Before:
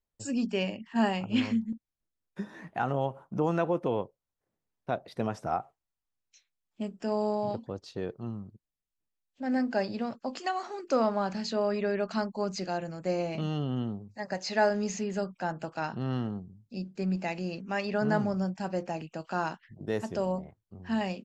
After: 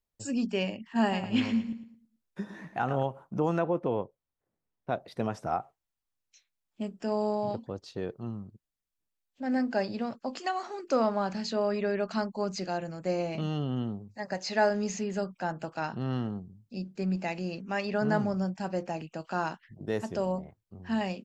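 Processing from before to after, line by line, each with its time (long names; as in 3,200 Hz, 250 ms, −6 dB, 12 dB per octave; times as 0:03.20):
0:01.01–0:03.03: repeating echo 109 ms, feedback 33%, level −11 dB
0:03.59–0:04.91: high-shelf EQ 3,500 Hz −11.5 dB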